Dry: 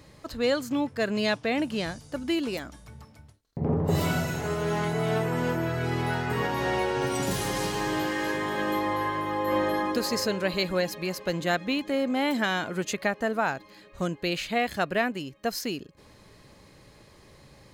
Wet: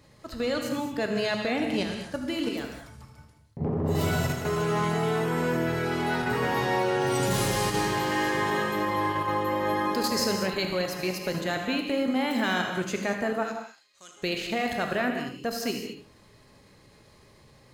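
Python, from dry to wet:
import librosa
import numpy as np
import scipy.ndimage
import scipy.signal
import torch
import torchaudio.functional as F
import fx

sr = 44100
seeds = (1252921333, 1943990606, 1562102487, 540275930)

y = fx.level_steps(x, sr, step_db=10)
y = fx.bandpass_q(y, sr, hz=6300.0, q=1.1, at=(13.42, 14.16), fade=0.02)
y = y + 10.0 ** (-12.0 / 20.0) * np.pad(y, (int(78 * sr / 1000.0), 0))[:len(y)]
y = fx.rev_gated(y, sr, seeds[0], gate_ms=250, shape='flat', drr_db=3.5)
y = y * librosa.db_to_amplitude(2.5)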